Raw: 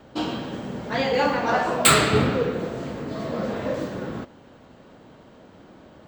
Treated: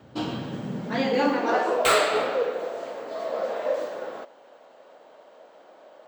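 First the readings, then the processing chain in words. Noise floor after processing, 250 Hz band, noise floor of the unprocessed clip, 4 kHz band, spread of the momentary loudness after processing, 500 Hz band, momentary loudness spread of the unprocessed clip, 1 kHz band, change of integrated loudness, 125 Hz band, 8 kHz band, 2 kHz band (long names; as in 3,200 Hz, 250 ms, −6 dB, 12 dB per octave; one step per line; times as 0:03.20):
−53 dBFS, −3.5 dB, −50 dBFS, −5.0 dB, 14 LU, 0.0 dB, 16 LU, −1.5 dB, −2.5 dB, −10.0 dB, −10.0 dB, −3.5 dB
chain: high-pass filter sweep 100 Hz → 590 Hz, 0:00.32–0:02.06
slew-rate limiting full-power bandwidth 580 Hz
level −3.5 dB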